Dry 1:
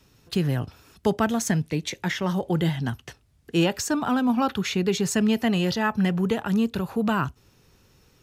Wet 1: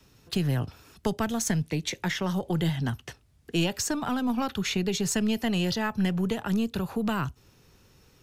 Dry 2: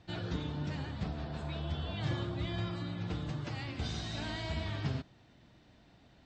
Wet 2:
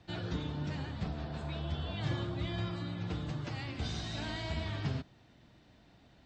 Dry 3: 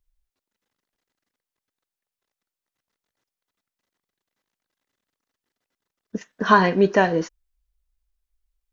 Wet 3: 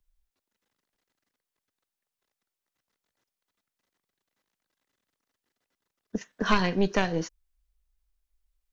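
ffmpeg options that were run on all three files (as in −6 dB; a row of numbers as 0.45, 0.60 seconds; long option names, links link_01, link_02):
-filter_complex "[0:a]aeval=exprs='0.891*(cos(1*acos(clip(val(0)/0.891,-1,1)))-cos(1*PI/2))+0.398*(cos(2*acos(clip(val(0)/0.891,-1,1)))-cos(2*PI/2))':channel_layout=same,acrossover=split=150|3000[link_01][link_02][link_03];[link_02]acompressor=threshold=-29dB:ratio=2.5[link_04];[link_01][link_04][link_03]amix=inputs=3:normalize=0"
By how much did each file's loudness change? −3.5, 0.0, −8.0 LU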